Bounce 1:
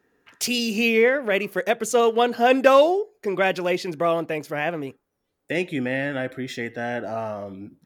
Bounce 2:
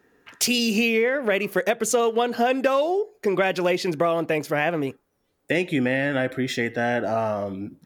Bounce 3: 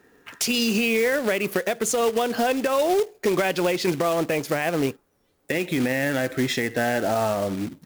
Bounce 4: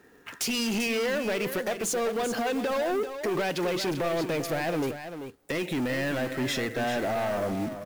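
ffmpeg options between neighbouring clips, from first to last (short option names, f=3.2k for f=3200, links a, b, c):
-af "acompressor=threshold=-23dB:ratio=10,volume=5.5dB"
-af "alimiter=limit=-17.5dB:level=0:latency=1:release=192,acrusher=bits=3:mode=log:mix=0:aa=0.000001,volume=4dB"
-af "asoftclip=type=tanh:threshold=-25dB,aecho=1:1:391:0.335"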